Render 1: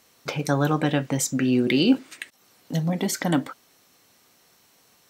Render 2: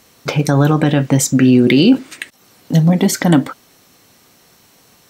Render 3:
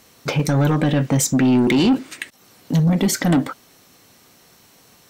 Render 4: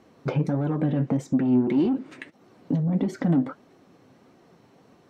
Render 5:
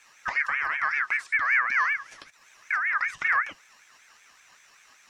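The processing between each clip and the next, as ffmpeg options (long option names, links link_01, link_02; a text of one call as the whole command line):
ffmpeg -i in.wav -af "lowshelf=frequency=300:gain=6.5,alimiter=level_in=9.5dB:limit=-1dB:release=50:level=0:latency=1,volume=-1dB" out.wav
ffmpeg -i in.wav -af "asoftclip=type=tanh:threshold=-9.5dB,volume=-1.5dB" out.wav
ffmpeg -i in.wav -af "acompressor=threshold=-23dB:ratio=6,bandpass=frequency=280:width_type=q:width=0.52:csg=0,flanger=delay=2.6:depth=5.3:regen=61:speed=1.6:shape=sinusoidal,volume=6.5dB" out.wav
ffmpeg -i in.wav -filter_complex "[0:a]highshelf=frequency=2900:width_type=q:width=3:gain=12,acrossover=split=2500[link_01][link_02];[link_02]acompressor=threshold=-46dB:ratio=4:attack=1:release=60[link_03];[link_01][link_03]amix=inputs=2:normalize=0,aeval=exprs='val(0)*sin(2*PI*1700*n/s+1700*0.2/5.2*sin(2*PI*5.2*n/s))':channel_layout=same" out.wav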